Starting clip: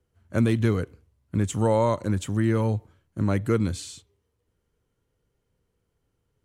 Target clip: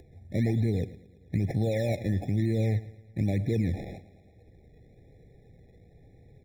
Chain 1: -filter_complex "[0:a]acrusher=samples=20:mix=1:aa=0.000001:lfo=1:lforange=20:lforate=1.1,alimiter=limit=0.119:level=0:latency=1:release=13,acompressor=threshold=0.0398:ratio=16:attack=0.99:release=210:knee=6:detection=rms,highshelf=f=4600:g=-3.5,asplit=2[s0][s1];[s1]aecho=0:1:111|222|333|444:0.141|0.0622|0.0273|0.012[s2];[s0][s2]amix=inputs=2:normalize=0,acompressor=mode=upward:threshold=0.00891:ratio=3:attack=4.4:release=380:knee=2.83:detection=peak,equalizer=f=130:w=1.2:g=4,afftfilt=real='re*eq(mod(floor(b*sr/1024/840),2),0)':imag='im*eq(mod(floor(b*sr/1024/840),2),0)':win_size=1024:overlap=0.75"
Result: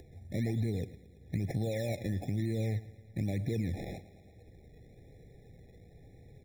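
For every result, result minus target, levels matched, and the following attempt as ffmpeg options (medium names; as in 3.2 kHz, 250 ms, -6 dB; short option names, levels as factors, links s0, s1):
compression: peak gain reduction +6.5 dB; 8 kHz band +6.0 dB
-filter_complex "[0:a]acrusher=samples=20:mix=1:aa=0.000001:lfo=1:lforange=20:lforate=1.1,alimiter=limit=0.119:level=0:latency=1:release=13,acompressor=threshold=0.106:ratio=16:attack=0.99:release=210:knee=6:detection=rms,highshelf=f=4600:g=-3.5,asplit=2[s0][s1];[s1]aecho=0:1:111|222|333|444:0.141|0.0622|0.0273|0.012[s2];[s0][s2]amix=inputs=2:normalize=0,acompressor=mode=upward:threshold=0.00891:ratio=3:attack=4.4:release=380:knee=2.83:detection=peak,equalizer=f=130:w=1.2:g=4,afftfilt=real='re*eq(mod(floor(b*sr/1024/840),2),0)':imag='im*eq(mod(floor(b*sr/1024/840),2),0)':win_size=1024:overlap=0.75"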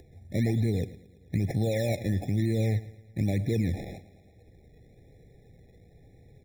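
8 kHz band +6.0 dB
-filter_complex "[0:a]acrusher=samples=20:mix=1:aa=0.000001:lfo=1:lforange=20:lforate=1.1,alimiter=limit=0.119:level=0:latency=1:release=13,acompressor=threshold=0.106:ratio=16:attack=0.99:release=210:knee=6:detection=rms,highshelf=f=4600:g=-11.5,asplit=2[s0][s1];[s1]aecho=0:1:111|222|333|444:0.141|0.0622|0.0273|0.012[s2];[s0][s2]amix=inputs=2:normalize=0,acompressor=mode=upward:threshold=0.00891:ratio=3:attack=4.4:release=380:knee=2.83:detection=peak,equalizer=f=130:w=1.2:g=4,afftfilt=real='re*eq(mod(floor(b*sr/1024/840),2),0)':imag='im*eq(mod(floor(b*sr/1024/840),2),0)':win_size=1024:overlap=0.75"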